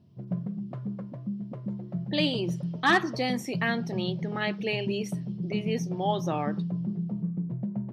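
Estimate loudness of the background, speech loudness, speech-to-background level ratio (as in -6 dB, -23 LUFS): -34.0 LUFS, -30.0 LUFS, 4.0 dB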